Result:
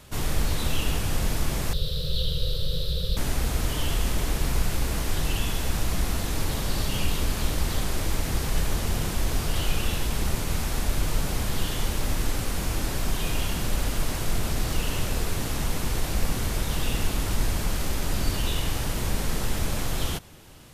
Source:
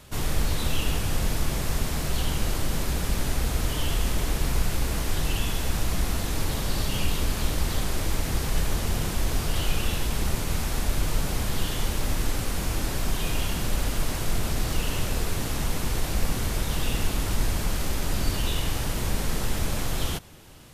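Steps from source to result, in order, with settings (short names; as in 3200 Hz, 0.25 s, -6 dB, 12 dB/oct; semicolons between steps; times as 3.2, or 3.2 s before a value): 1.73–3.17 EQ curve 170 Hz 0 dB, 250 Hz -29 dB, 510 Hz +6 dB, 780 Hz -28 dB, 1300 Hz -13 dB, 2200 Hz -19 dB, 3800 Hz +12 dB, 6600 Hz -16 dB, 15000 Hz -6 dB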